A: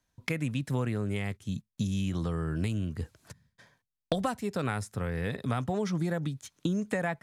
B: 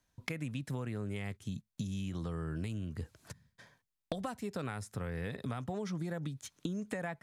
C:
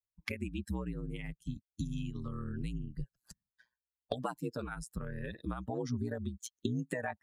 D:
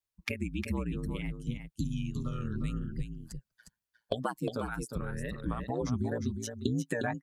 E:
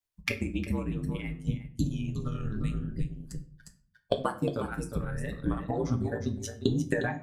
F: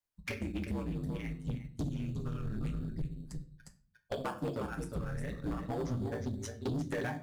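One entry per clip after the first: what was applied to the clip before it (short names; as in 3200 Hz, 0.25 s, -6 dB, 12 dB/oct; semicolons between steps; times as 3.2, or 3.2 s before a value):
compressor 3:1, threshold -37 dBFS, peak gain reduction 10.5 dB
per-bin expansion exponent 2; ring modulator 60 Hz; gain +8 dB
wow and flutter 100 cents; on a send: echo 0.357 s -7 dB; on the sum: gain +3.5 dB
transient shaper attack +5 dB, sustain -8 dB; shoebox room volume 38 m³, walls mixed, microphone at 0.32 m
in parallel at -10 dB: sample-and-hold 11×; on the sum: soft clip -25 dBFS, distortion -10 dB; Doppler distortion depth 0.19 ms; gain -4.5 dB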